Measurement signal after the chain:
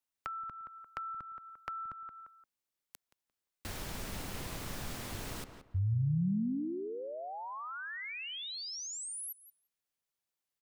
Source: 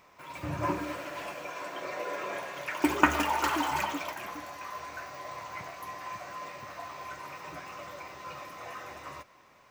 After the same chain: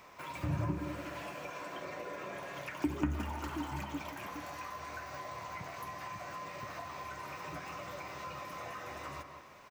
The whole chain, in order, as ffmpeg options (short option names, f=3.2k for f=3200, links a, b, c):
-filter_complex "[0:a]asplit=2[a][b];[b]adelay=174,lowpass=f=2.2k:p=1,volume=-11dB,asplit=2[c][d];[d]adelay=174,lowpass=f=2.2k:p=1,volume=0.26,asplit=2[e][f];[f]adelay=174,lowpass=f=2.2k:p=1,volume=0.26[g];[a][c][e][g]amix=inputs=4:normalize=0,acrossover=split=230[h][i];[i]acompressor=threshold=-44dB:ratio=10[j];[h][j]amix=inputs=2:normalize=0,volume=3.5dB"